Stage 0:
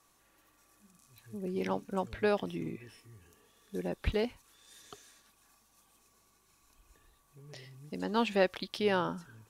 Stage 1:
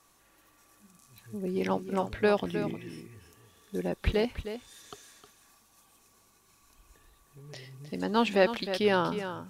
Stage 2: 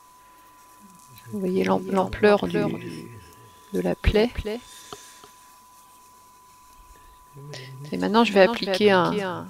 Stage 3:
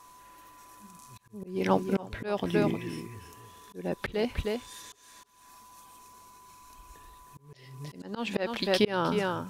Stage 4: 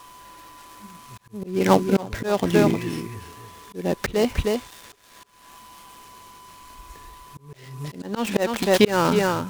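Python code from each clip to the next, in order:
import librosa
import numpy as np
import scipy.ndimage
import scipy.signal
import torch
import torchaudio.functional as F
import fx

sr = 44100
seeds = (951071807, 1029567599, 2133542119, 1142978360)

y1 = x + 10.0 ** (-10.5 / 20.0) * np.pad(x, (int(311 * sr / 1000.0), 0))[:len(x)]
y1 = y1 * librosa.db_to_amplitude(4.0)
y2 = y1 + 10.0 ** (-58.0 / 20.0) * np.sin(2.0 * np.pi * 1000.0 * np.arange(len(y1)) / sr)
y2 = y2 * librosa.db_to_amplitude(7.5)
y3 = fx.auto_swell(y2, sr, attack_ms=334.0)
y3 = y3 * librosa.db_to_amplitude(-1.5)
y4 = fx.dead_time(y3, sr, dead_ms=0.12)
y4 = y4 * librosa.db_to_amplitude(8.5)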